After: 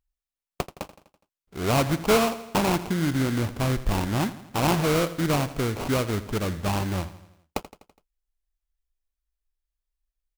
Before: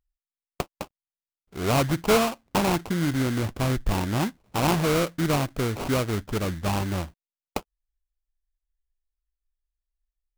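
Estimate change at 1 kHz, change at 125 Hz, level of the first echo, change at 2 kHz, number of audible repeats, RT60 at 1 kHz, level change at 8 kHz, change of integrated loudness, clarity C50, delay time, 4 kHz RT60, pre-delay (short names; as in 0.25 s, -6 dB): 0.0 dB, 0.0 dB, -15.5 dB, 0.0 dB, 4, none, 0.0 dB, 0.0 dB, none, 83 ms, none, none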